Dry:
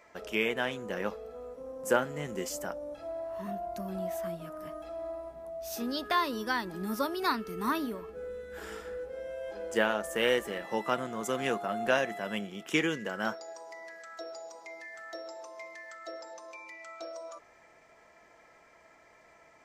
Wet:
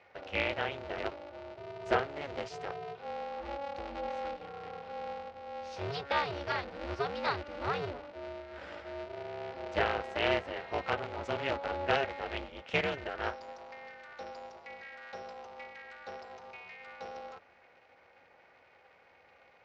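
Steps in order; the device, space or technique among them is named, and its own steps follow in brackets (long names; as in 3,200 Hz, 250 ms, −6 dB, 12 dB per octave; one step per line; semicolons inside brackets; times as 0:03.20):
ring modulator pedal into a guitar cabinet (ring modulator with a square carrier 140 Hz; loudspeaker in its box 85–4,100 Hz, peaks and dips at 140 Hz −7 dB, 210 Hz −10 dB, 310 Hz −9 dB, 1,100 Hz −6 dB, 1,700 Hz −4 dB, 3,400 Hz −4 dB)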